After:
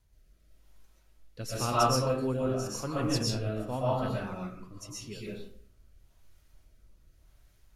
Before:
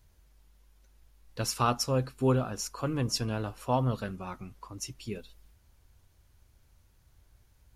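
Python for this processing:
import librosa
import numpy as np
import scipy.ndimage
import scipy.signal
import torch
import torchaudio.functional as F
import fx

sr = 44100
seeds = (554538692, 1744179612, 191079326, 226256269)

y = fx.rev_freeverb(x, sr, rt60_s=0.62, hf_ratio=0.6, predelay_ms=85, drr_db=-5.5)
y = fx.rotary(y, sr, hz=0.9)
y = F.gain(torch.from_numpy(y), -3.5).numpy()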